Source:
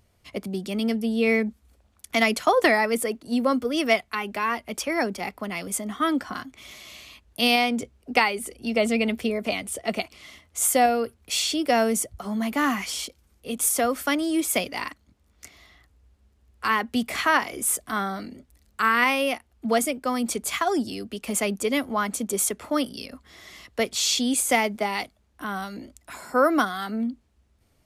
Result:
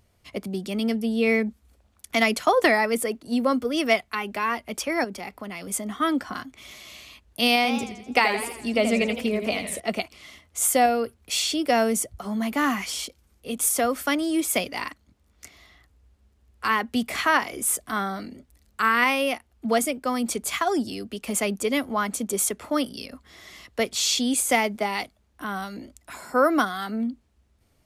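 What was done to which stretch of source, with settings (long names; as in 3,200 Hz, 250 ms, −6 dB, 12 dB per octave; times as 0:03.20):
0:05.04–0:05.68: downward compressor 2.5 to 1, threshold −33 dBFS
0:07.56–0:09.80: feedback echo with a swinging delay time 83 ms, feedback 53%, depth 160 cents, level −8.5 dB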